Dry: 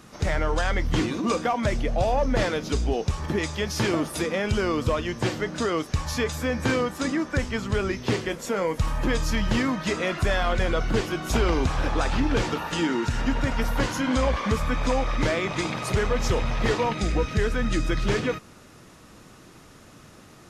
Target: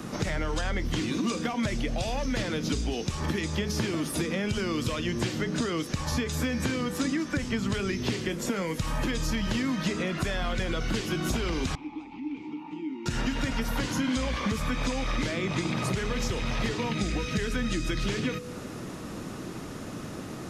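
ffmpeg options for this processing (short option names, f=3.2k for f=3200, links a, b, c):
-filter_complex "[0:a]equalizer=f=260:t=o:w=2.6:g=8,bandreject=f=70.42:t=h:w=4,bandreject=f=140.84:t=h:w=4,bandreject=f=211.26:t=h:w=4,bandreject=f=281.68:t=h:w=4,bandreject=f=352.1:t=h:w=4,bandreject=f=422.52:t=h:w=4,bandreject=f=492.94:t=h:w=4,acrossover=split=2100[a][b];[a]acompressor=threshold=-28dB:ratio=6[c];[b]alimiter=level_in=4dB:limit=-24dB:level=0:latency=1:release=435,volume=-4dB[d];[c][d]amix=inputs=2:normalize=0,acrossover=split=280|1100[e][f][g];[e]acompressor=threshold=-34dB:ratio=4[h];[f]acompressor=threshold=-44dB:ratio=4[i];[g]acompressor=threshold=-40dB:ratio=4[j];[h][i][j]amix=inputs=3:normalize=0,asettb=1/sr,asplit=3[k][l][m];[k]atrim=end=11.754[n];[l]atrim=start=11.75:end=13.06,asetpts=PTS-STARTPTS,afade=t=in:d=0.004:c=qsin,afade=t=out:st=1.306:d=0.004:c=qsin,asplit=3[o][p][q];[o]bandpass=f=300:t=q:w=8,volume=0dB[r];[p]bandpass=f=870:t=q:w=8,volume=-6dB[s];[q]bandpass=f=2.24k:t=q:w=8,volume=-9dB[t];[r][s][t]amix=inputs=3:normalize=0[u];[m]atrim=start=13.056[v];[n][u]acrossfade=d=0.004:c1=hsin:c2=qsin[w];[w][v]acrossfade=d=0.004:c1=qsin:c2=hsin,volume=6.5dB"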